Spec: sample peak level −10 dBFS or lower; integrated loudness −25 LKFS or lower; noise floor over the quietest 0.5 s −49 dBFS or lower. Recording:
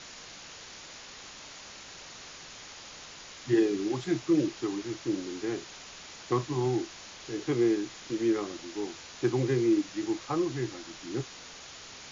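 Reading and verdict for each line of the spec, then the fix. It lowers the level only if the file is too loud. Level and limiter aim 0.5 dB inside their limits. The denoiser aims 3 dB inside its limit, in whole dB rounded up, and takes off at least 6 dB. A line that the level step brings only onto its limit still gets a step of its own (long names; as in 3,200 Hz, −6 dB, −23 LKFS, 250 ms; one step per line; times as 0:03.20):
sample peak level −14.0 dBFS: in spec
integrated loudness −30.5 LKFS: in spec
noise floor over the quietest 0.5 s −47 dBFS: out of spec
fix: broadband denoise 6 dB, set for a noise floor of −47 dBFS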